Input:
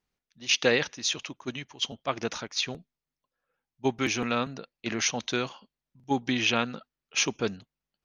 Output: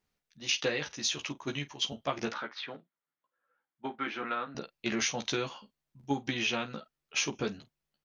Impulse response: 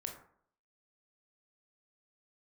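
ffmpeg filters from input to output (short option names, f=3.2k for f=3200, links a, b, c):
-filter_complex "[0:a]acompressor=threshold=-29dB:ratio=6,asettb=1/sr,asplit=3[a][b][c];[a]atrim=end=2.324[d];[b]atrim=start=2.32:end=4.55,asetpts=PTS-STARTPTS,afade=t=in:d=0.004:c=qsin,afade=t=out:st=2.226:d=0.004:c=qsin,highpass=320,equalizer=f=430:t=q:w=4:g=-5,equalizer=f=680:t=q:w=4:g=-4,equalizer=f=1.4k:t=q:w=4:g=5,equalizer=f=2.6k:t=q:w=4:g=-8,lowpass=f=3.1k:w=0.5412,lowpass=f=3.1k:w=1.3066[e];[c]atrim=start=4.546[f];[d][e]acrossfade=d=0.004:c1=hsin:c2=qsin[g];[g][f]acrossfade=d=0.004:c1=qsin:c2=hsin,aecho=1:1:14|49:0.668|0.168"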